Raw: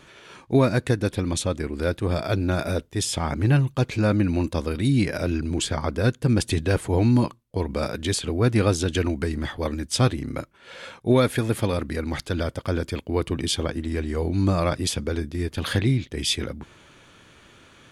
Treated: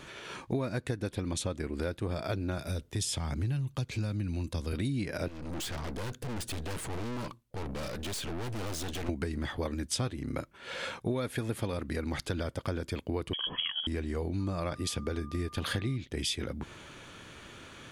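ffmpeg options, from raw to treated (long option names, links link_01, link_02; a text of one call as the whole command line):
ffmpeg -i in.wav -filter_complex "[0:a]asettb=1/sr,asplit=3[link_01][link_02][link_03];[link_01]atrim=end=2.584[link_04];[link_02]atrim=start=2.58:end=4.73,asetpts=PTS-STARTPTS,afade=type=in:duration=0.004:curve=qsin,afade=type=out:start_time=2.146:duration=0.004:curve=qsin,acrossover=split=170|3000[link_05][link_06][link_07];[link_06]acompressor=threshold=-40dB:ratio=2:attack=3.2:release=140:knee=2.83:detection=peak[link_08];[link_05][link_08][link_07]amix=inputs=3:normalize=0[link_09];[link_03]atrim=start=4.726[link_10];[link_04][link_09]acrossfade=duration=0.004:curve1=hsin:curve2=qsin[link_11];[link_11][link_10]acrossfade=duration=0.004:curve1=qsin:curve2=hsin,asettb=1/sr,asplit=3[link_12][link_13][link_14];[link_12]atrim=end=5.284[link_15];[link_13]atrim=start=5.28:end=9.09,asetpts=PTS-STARTPTS,afade=type=in:duration=0.004:curve=qsin,afade=type=out:start_time=3.806:duration=0.004:curve=qsin,aeval=exprs='(tanh(79.4*val(0)+0.5)-tanh(0.5))/79.4':channel_layout=same[link_16];[link_14]atrim=start=9.086[link_17];[link_15][link_16]acrossfade=duration=0.004:curve1=hsin:curve2=qsin[link_18];[link_18][link_17]acrossfade=duration=0.004:curve1=qsin:curve2=hsin,asettb=1/sr,asplit=3[link_19][link_20][link_21];[link_19]atrim=end=13.334[link_22];[link_20]atrim=start=13.33:end=13.87,asetpts=PTS-STARTPTS,afade=type=in:duration=0.004:curve=qsin,afade=type=out:start_time=0.536:duration=0.004:curve=qsin,lowpass=frequency=2900:width_type=q:width=0.5098,lowpass=frequency=2900:width_type=q:width=0.6013,lowpass=frequency=2900:width_type=q:width=0.9,lowpass=frequency=2900:width_type=q:width=2.563,afreqshift=-3400[link_23];[link_21]atrim=start=13.866[link_24];[link_22][link_23]acrossfade=duration=0.004:curve1=hsin:curve2=qsin[link_25];[link_25][link_24]acrossfade=duration=0.004:curve1=qsin:curve2=hsin,asettb=1/sr,asplit=3[link_26][link_27][link_28];[link_26]atrim=end=14.404[link_29];[link_27]atrim=start=14.4:end=15.96,asetpts=PTS-STARTPTS,afade=type=in:duration=0.004:curve=qsin,afade=type=out:start_time=1.556:duration=0.004:curve=qsin,aeval=exprs='val(0)+0.00708*sin(2*PI*1200*n/s)':channel_layout=same[link_30];[link_28]atrim=start=15.956[link_31];[link_29][link_30]acrossfade=duration=0.004:curve1=hsin:curve2=qsin[link_32];[link_32][link_31]acrossfade=duration=0.004:curve1=qsin:curve2=hsin,acompressor=threshold=-33dB:ratio=6,volume=2.5dB" out.wav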